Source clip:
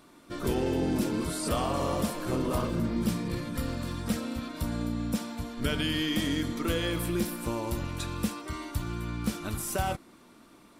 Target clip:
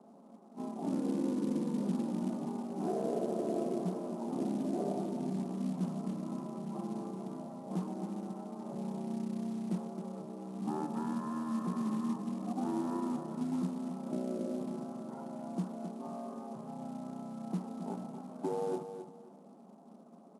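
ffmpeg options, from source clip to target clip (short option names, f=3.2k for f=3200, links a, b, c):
-filter_complex "[0:a]asplit=2[a][b];[b]acompressor=threshold=-41dB:ratio=12,volume=0dB[c];[a][c]amix=inputs=2:normalize=0,aecho=1:1:140|280|420:0.335|0.0938|0.0263,highpass=f=210:t=q:w=0.5412,highpass=f=210:t=q:w=1.307,lowpass=f=2k:t=q:w=0.5176,lowpass=f=2k:t=q:w=0.7071,lowpass=f=2k:t=q:w=1.932,afreqshift=130,acrusher=bits=6:mode=log:mix=0:aa=0.000001,asetrate=23329,aresample=44100,volume=-5.5dB"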